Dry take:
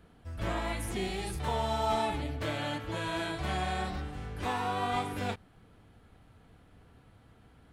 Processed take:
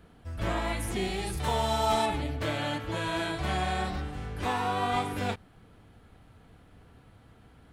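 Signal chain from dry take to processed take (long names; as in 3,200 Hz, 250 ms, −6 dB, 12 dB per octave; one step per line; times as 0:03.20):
0:01.37–0:02.06: high-shelf EQ 4,200 Hz +7 dB
level +3 dB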